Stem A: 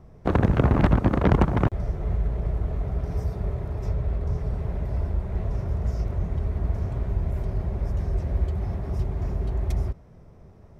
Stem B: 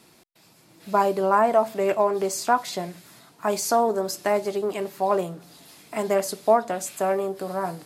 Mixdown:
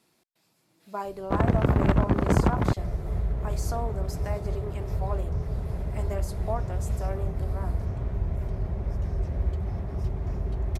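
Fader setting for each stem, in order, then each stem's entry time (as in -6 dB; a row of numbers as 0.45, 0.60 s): -2.5, -13.0 dB; 1.05, 0.00 s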